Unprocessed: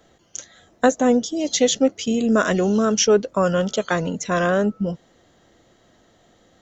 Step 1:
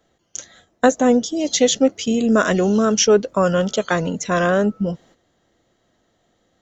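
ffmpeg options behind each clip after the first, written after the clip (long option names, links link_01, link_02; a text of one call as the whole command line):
ffmpeg -i in.wav -af "agate=range=-10dB:threshold=-50dB:ratio=16:detection=peak,volume=2dB" out.wav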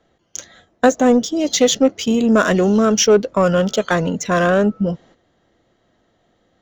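ffmpeg -i in.wav -filter_complex "[0:a]asplit=2[link_01][link_02];[link_02]asoftclip=type=tanh:threshold=-14dB,volume=-4dB[link_03];[link_01][link_03]amix=inputs=2:normalize=0,adynamicsmooth=sensitivity=2.5:basefreq=5600,volume=-1dB" out.wav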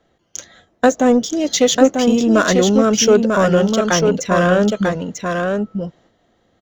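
ffmpeg -i in.wav -af "aecho=1:1:944:0.596" out.wav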